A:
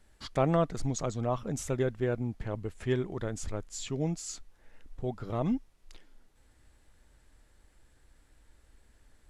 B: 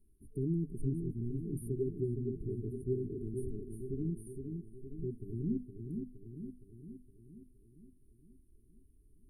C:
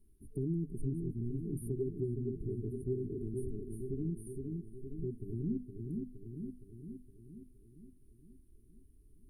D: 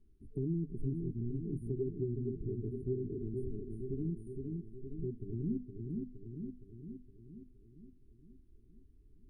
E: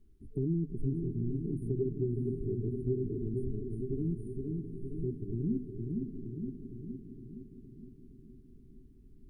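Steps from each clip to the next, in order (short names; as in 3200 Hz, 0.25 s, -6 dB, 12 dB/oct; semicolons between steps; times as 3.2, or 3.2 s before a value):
notches 50/100/150/200/250 Hz; dark delay 0.465 s, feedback 57%, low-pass 3900 Hz, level -5.5 dB; FFT band-reject 440–8700 Hz; gain -4 dB
compressor 1.5:1, threshold -40 dBFS, peak gain reduction 4.5 dB; gain +2.5 dB
air absorption 120 m
diffused feedback echo 0.666 s, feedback 46%, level -11 dB; gain +3.5 dB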